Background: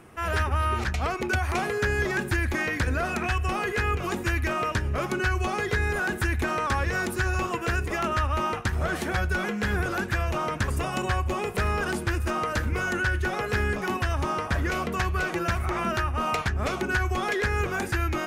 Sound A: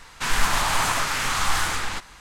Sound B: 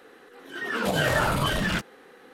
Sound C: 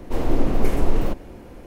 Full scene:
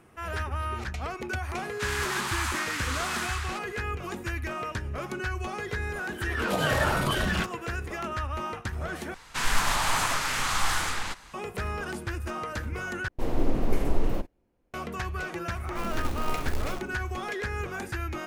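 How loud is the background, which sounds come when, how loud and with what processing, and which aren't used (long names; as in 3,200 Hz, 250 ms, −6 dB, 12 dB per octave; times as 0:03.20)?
background −6.5 dB
0:01.59: mix in A −3 dB + four-pole ladder high-pass 820 Hz, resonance 20%
0:05.65: mix in B −2.5 dB
0:09.14: overwrite with A −3.5 dB
0:13.08: overwrite with C −5.5 dB + noise gate −32 dBFS, range −26 dB
0:15.65: mix in C −13.5 dB + one scale factor per block 3 bits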